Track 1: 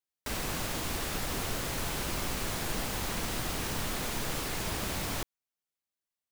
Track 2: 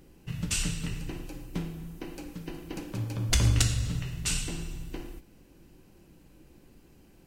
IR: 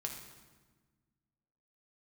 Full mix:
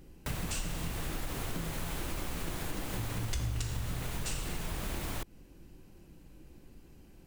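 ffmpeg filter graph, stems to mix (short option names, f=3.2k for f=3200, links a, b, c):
-filter_complex "[0:a]equalizer=f=5.2k:w=1.7:g=-4,volume=0dB[a];[1:a]volume=-1.5dB[b];[a][b]amix=inputs=2:normalize=0,lowshelf=f=100:g=6.5,acompressor=threshold=-33dB:ratio=4"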